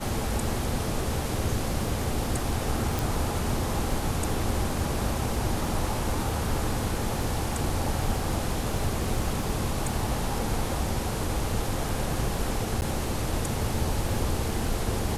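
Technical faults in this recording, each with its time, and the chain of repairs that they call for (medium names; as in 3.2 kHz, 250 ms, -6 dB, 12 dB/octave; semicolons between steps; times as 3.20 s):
crackle 40 per s -35 dBFS
2.99 s: pop
12.81–12.82 s: dropout 9.6 ms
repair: de-click; interpolate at 12.81 s, 9.6 ms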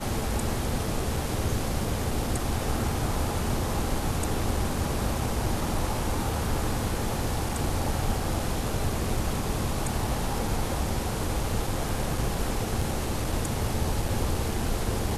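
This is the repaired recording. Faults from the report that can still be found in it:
nothing left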